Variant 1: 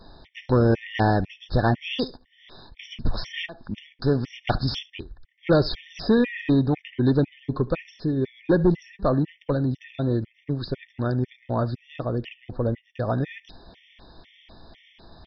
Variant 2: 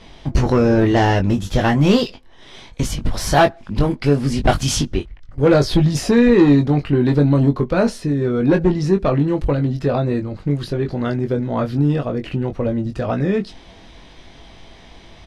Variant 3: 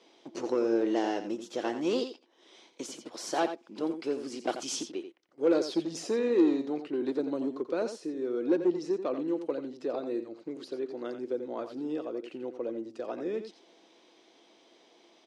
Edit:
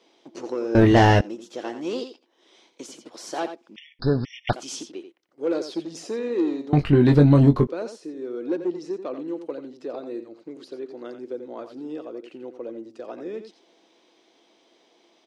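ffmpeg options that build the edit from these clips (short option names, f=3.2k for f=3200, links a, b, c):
-filter_complex "[1:a]asplit=2[a][b];[2:a]asplit=4[c][d][e][f];[c]atrim=end=0.752[g];[a]atrim=start=0.748:end=1.212[h];[d]atrim=start=1.208:end=3.762[i];[0:a]atrim=start=3.758:end=4.532[j];[e]atrim=start=4.528:end=6.732[k];[b]atrim=start=6.728:end=7.672[l];[f]atrim=start=7.668[m];[g][h]acrossfade=d=0.004:c1=hsin:c2=hsin[n];[n][i]acrossfade=d=0.004:c1=hsin:c2=hsin[o];[o][j]acrossfade=d=0.004:c1=hsin:c2=hsin[p];[p][k]acrossfade=d=0.004:c1=hsin:c2=hsin[q];[q][l]acrossfade=d=0.004:c1=hsin:c2=hsin[r];[r][m]acrossfade=d=0.004:c1=hsin:c2=hsin"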